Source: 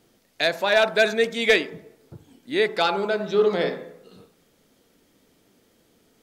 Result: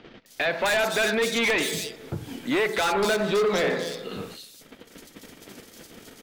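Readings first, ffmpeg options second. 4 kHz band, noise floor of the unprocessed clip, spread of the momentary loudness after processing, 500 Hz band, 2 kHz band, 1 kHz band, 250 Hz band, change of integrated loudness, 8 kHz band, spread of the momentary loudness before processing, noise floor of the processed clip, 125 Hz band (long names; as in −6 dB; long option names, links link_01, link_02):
−1.5 dB, −63 dBFS, 14 LU, −3.0 dB, −1.0 dB, −1.0 dB, +1.5 dB, −2.5 dB, can't be measured, 9 LU, −52 dBFS, +3.0 dB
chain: -filter_complex "[0:a]bandreject=frequency=60:width_type=h:width=6,bandreject=frequency=120:width_type=h:width=6,bandreject=frequency=180:width_type=h:width=6,agate=range=-34dB:threshold=-58dB:ratio=16:detection=peak,highshelf=frequency=7000:gain=-5,asplit=2[link_01][link_02];[link_02]acompressor=mode=upward:threshold=-21dB:ratio=2.5,volume=-1dB[link_03];[link_01][link_03]amix=inputs=2:normalize=0,alimiter=limit=-10dB:level=0:latency=1:release=158,acrossover=split=140|1500[link_04][link_05][link_06];[link_06]acontrast=77[link_07];[link_04][link_05][link_07]amix=inputs=3:normalize=0,asoftclip=type=hard:threshold=-19.5dB,acrossover=split=3600[link_08][link_09];[link_09]adelay=260[link_10];[link_08][link_10]amix=inputs=2:normalize=0"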